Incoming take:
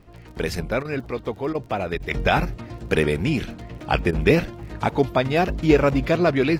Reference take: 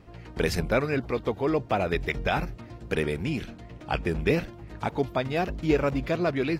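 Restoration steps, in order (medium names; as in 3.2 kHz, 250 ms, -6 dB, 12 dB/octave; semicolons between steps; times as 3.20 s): de-click; interpolate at 0.83/1.53/1.98/4.11 s, 18 ms; expander -32 dBFS, range -21 dB; trim 0 dB, from 2.11 s -7 dB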